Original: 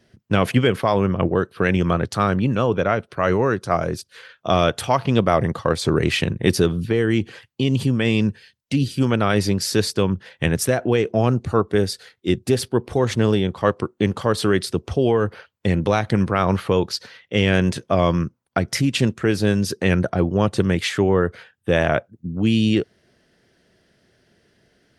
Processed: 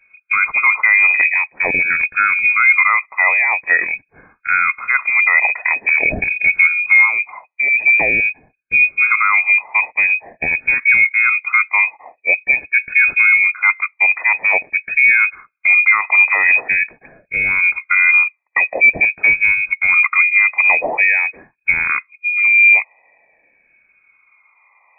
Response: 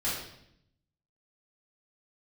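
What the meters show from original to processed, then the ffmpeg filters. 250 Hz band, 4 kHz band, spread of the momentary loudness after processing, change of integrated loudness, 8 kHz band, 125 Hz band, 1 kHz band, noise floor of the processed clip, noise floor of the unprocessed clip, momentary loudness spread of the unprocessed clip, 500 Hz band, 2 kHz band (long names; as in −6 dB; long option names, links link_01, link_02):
below −15 dB, below −40 dB, 8 LU, +8.0 dB, below −40 dB, below −20 dB, +2.0 dB, −62 dBFS, −67 dBFS, 6 LU, −12.5 dB, +19.0 dB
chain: -af "afftfilt=real='re*pow(10,24/40*sin(2*PI*(0.67*log(max(b,1)*sr/1024/100)/log(2)-(0.46)*(pts-256)/sr)))':imag='im*pow(10,24/40*sin(2*PI*(0.67*log(max(b,1)*sr/1024/100)/log(2)-(0.46)*(pts-256)/sr)))':win_size=1024:overlap=0.75,highpass=frequency=40:poles=1,alimiter=limit=-3.5dB:level=0:latency=1:release=41,lowpass=frequency=2200:width_type=q:width=0.5098,lowpass=frequency=2200:width_type=q:width=0.6013,lowpass=frequency=2200:width_type=q:width=0.9,lowpass=frequency=2200:width_type=q:width=2.563,afreqshift=-2600,volume=1dB"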